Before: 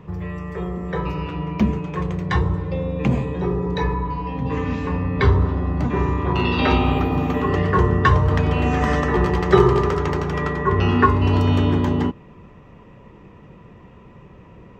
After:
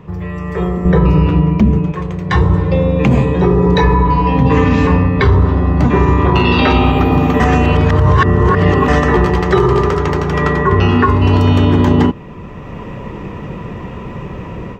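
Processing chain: 0.85–1.92 low shelf 470 Hz +12 dB; AGC gain up to 13.5 dB; 7.4–8.88 reverse; maximiser +6 dB; gain -1 dB

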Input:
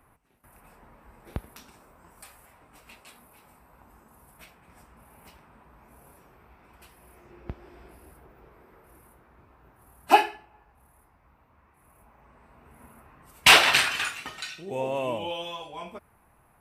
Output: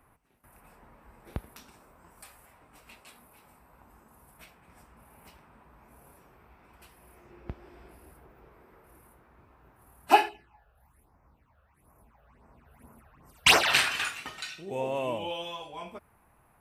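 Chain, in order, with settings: 10.28–13.69 phaser stages 8, 0.72 Hz -> 3.8 Hz, lowest notch 270–3700 Hz; gain -2 dB

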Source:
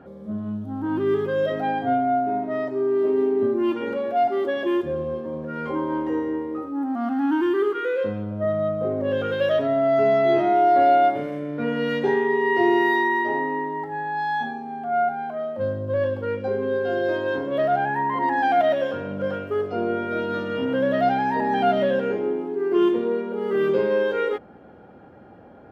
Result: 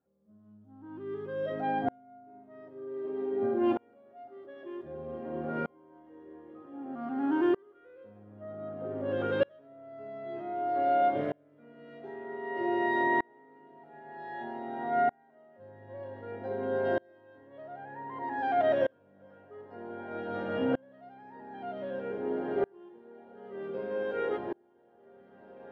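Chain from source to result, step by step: high shelf 4200 Hz -12 dB; diffused feedback echo 1.738 s, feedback 62%, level -12 dB; dB-ramp tremolo swelling 0.53 Hz, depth 34 dB; gain -2.5 dB

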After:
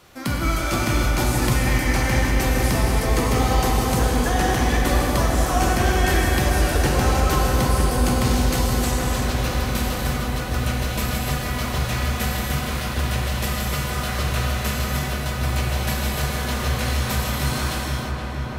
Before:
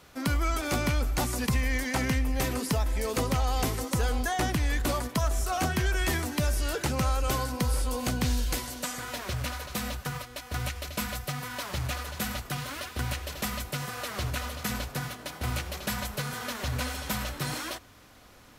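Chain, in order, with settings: darkening echo 0.472 s, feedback 84%, low-pass 2500 Hz, level -5 dB; non-linear reverb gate 0.37 s flat, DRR -2.5 dB; gain +2.5 dB

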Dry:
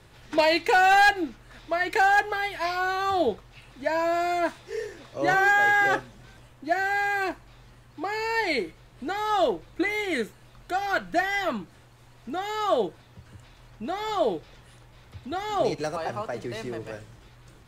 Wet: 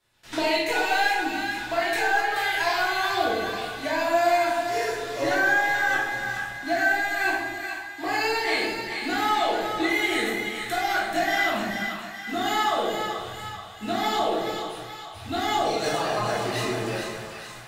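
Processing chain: gate with hold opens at -40 dBFS; tilt +2.5 dB/oct; compressor 6:1, threshold -28 dBFS, peak gain reduction 14 dB; soft clip -21 dBFS, distortion -24 dB; on a send: split-band echo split 820 Hz, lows 0.127 s, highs 0.431 s, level -6 dB; on the sum: shoebox room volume 250 m³, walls mixed, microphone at 2.9 m; gain -2 dB

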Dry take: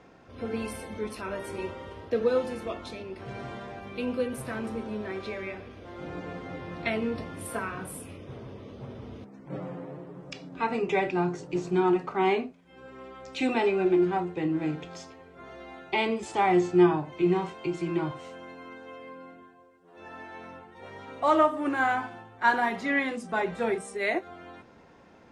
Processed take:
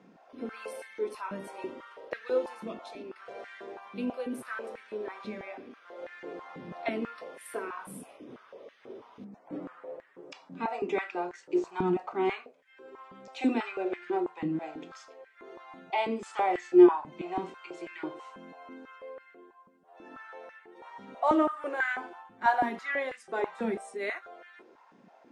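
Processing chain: stepped high-pass 6.1 Hz 200–1800 Hz; gain -7.5 dB

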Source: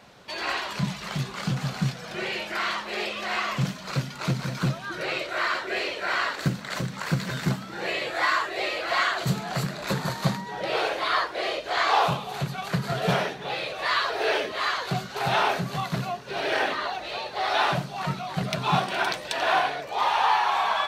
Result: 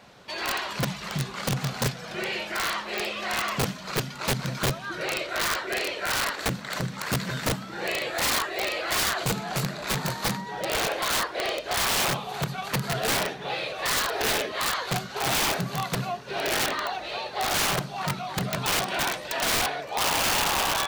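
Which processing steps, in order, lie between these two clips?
wrapped overs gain 19 dB

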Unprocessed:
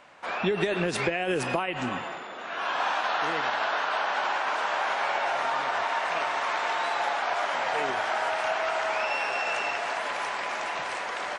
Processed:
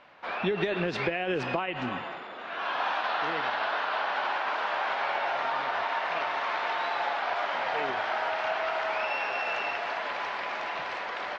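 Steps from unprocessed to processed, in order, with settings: LPF 4700 Hz 24 dB/oct; gain -2 dB

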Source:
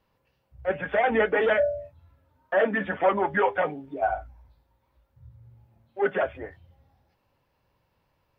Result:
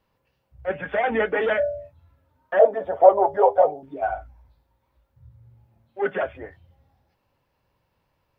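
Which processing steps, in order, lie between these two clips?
2.59–3.83 EQ curve 110 Hz 0 dB, 220 Hz -16 dB, 400 Hz +4 dB, 670 Hz +13 dB, 1700 Hz -15 dB, 2600 Hz -18 dB, 5400 Hz +2 dB

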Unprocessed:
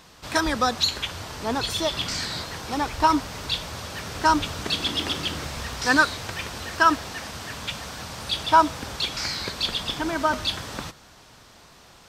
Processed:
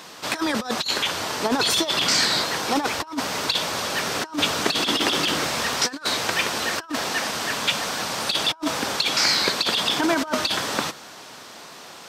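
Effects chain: HPF 240 Hz 12 dB/oct; negative-ratio compressor -28 dBFS, ratio -0.5; gain +6 dB

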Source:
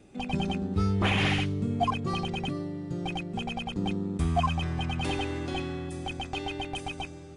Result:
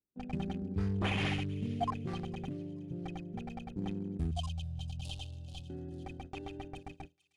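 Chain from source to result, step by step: Wiener smoothing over 41 samples; gate -39 dBFS, range -34 dB; 4.31–5.7 EQ curve 120 Hz 0 dB, 380 Hz -26 dB, 600 Hz -7 dB, 2000 Hz -24 dB, 3000 Hz +7 dB; thin delay 0.444 s, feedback 43%, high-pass 3600 Hz, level -14.5 dB; gain -6.5 dB

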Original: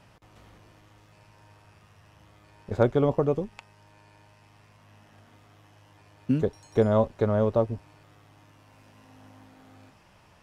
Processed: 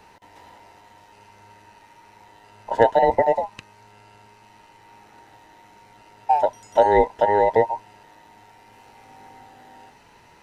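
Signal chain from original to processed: band inversion scrambler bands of 1000 Hz; gain +5.5 dB

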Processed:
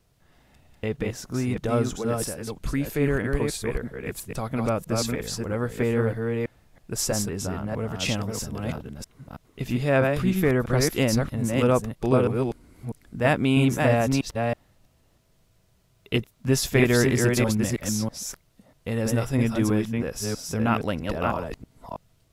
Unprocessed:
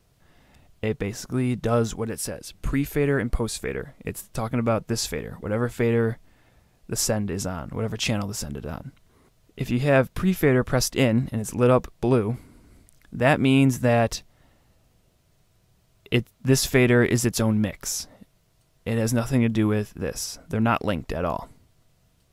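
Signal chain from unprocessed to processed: reverse delay 0.323 s, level -3 dB; gain -2.5 dB

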